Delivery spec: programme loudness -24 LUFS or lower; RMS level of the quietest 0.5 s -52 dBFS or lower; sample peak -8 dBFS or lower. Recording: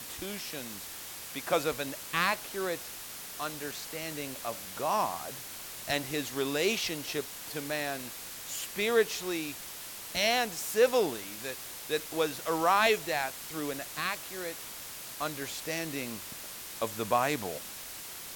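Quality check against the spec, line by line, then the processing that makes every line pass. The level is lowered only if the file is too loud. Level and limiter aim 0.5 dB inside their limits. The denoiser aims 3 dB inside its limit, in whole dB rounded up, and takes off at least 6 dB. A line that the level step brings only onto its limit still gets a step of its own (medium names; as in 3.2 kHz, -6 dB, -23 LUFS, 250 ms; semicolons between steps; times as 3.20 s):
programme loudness -32.5 LUFS: pass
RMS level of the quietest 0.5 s -43 dBFS: fail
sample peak -12.5 dBFS: pass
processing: noise reduction 12 dB, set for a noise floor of -43 dBFS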